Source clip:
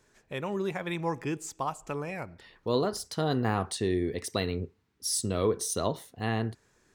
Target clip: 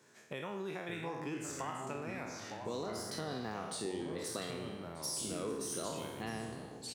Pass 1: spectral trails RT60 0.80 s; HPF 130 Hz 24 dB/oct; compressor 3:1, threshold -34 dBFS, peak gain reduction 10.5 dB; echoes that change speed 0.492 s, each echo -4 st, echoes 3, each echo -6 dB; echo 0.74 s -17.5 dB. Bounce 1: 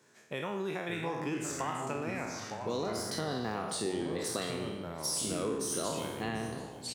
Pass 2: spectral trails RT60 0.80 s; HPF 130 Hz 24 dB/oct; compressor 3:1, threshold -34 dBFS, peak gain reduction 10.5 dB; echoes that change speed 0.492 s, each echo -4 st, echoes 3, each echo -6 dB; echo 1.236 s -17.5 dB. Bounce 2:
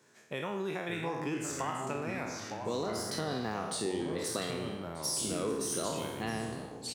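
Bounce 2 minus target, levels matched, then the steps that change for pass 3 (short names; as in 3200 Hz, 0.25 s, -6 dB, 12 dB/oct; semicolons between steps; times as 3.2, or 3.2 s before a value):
compressor: peak gain reduction -5.5 dB
change: compressor 3:1, threshold -42 dBFS, peak gain reduction 15.5 dB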